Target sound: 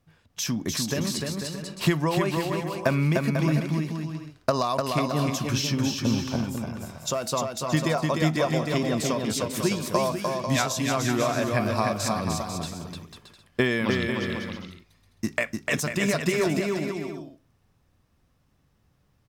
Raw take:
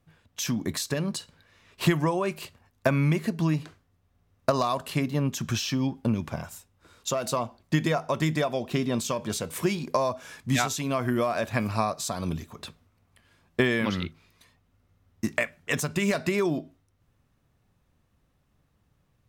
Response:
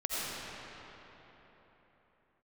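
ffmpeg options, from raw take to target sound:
-filter_complex "[0:a]equalizer=frequency=5200:width_type=o:width=0.36:gain=4.5,asplit=2[link_01][link_02];[link_02]aecho=0:1:300|495|621.8|704.1|757.7:0.631|0.398|0.251|0.158|0.1[link_03];[link_01][link_03]amix=inputs=2:normalize=0"

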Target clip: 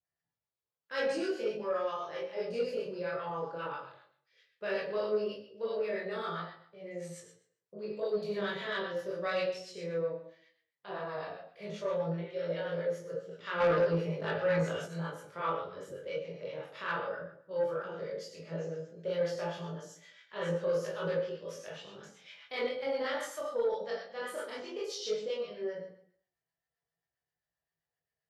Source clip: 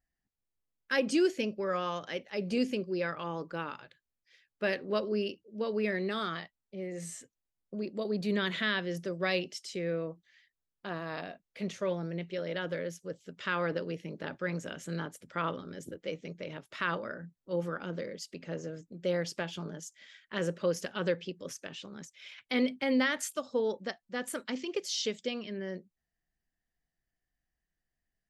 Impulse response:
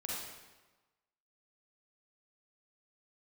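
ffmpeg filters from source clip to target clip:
-filter_complex "[0:a]adynamicequalizer=threshold=0.00355:dfrequency=2600:dqfactor=0.89:tfrequency=2600:tqfactor=0.89:attack=5:release=100:ratio=0.375:range=3.5:mode=cutabove:tftype=bell[link_01];[1:a]atrim=start_sample=2205,asetrate=83790,aresample=44100[link_02];[link_01][link_02]afir=irnorm=-1:irlink=0,asettb=1/sr,asplit=3[link_03][link_04][link_05];[link_03]atrim=end=13.604[link_06];[link_04]atrim=start=13.6:end=14.86,asetpts=PTS-STARTPTS,afade=type=in:duration=0.004:curve=qsin,afade=type=out:start_time=1.256:duration=0.004:curve=qsin,acontrast=89[link_07];[link_05]atrim=start=14.856[link_08];[link_06][link_07]acrossfade=duration=0.004:curve1=hsin:curve2=qsin[link_09];[link_09][link_08]acrossfade=duration=0.004:curve1=qsin:curve2=hsin,highpass=98,acrossover=split=870[link_10][link_11];[link_10]aeval=exprs='val(0)*(1-0.5/2+0.5/2*cos(2*PI*7.6*n/s))':channel_layout=same[link_12];[link_11]aeval=exprs='val(0)*(1-0.5/2-0.5/2*cos(2*PI*7.6*n/s))':channel_layout=same[link_13];[link_12][link_13]amix=inputs=2:normalize=0,equalizer=frequency=125:width_type=o:width=1:gain=8,equalizer=frequency=250:width_type=o:width=1:gain=-11,equalizer=frequency=500:width_type=o:width=1:gain=9,equalizer=frequency=1000:width_type=o:width=1:gain=5,equalizer=frequency=4000:width_type=o:width=1:gain=3,equalizer=frequency=8000:width_type=o:width=1:gain=-4,flanger=delay=17:depth=4.9:speed=0.15,asoftclip=type=tanh:threshold=-26dB,volume=4.5dB"

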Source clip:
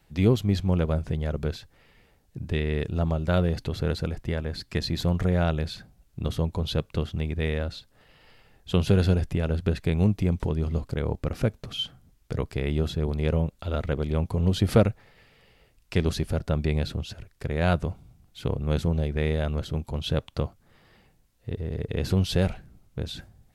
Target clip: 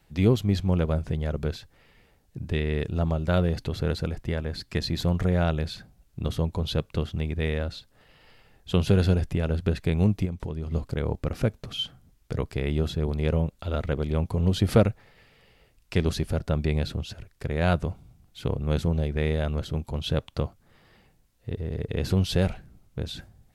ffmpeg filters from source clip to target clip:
ffmpeg -i in.wav -filter_complex "[0:a]asettb=1/sr,asplit=3[link_01][link_02][link_03];[link_01]atrim=end=10.254[link_04];[link_02]atrim=start=10.25:end=10.72,asetpts=PTS-STARTPTS,afade=type=in:duration=0.004:curve=qsin,afade=type=out:start_time=0.466:duration=0.004:curve=qsin,acompressor=threshold=-29dB:ratio=5[link_05];[link_03]atrim=start=10.716[link_06];[link_04][link_05]acrossfade=duration=0.004:curve1=hsin:curve2=qsin[link_07];[link_07][link_06]acrossfade=duration=0.004:curve1=qsin:curve2=hsin" out.wav

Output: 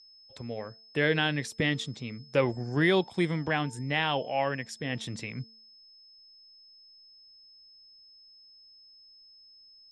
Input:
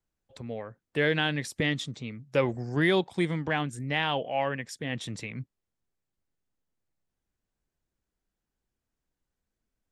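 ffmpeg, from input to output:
ffmpeg -i in.wav -af "aeval=exprs='val(0)+0.00224*sin(2*PI*5200*n/s)':channel_layout=same,lowpass=10000,bandreject=frequency=223.7:width_type=h:width=4,bandreject=frequency=447.4:width_type=h:width=4,bandreject=frequency=671.1:width_type=h:width=4,bandreject=frequency=894.8:width_type=h:width=4" out.wav

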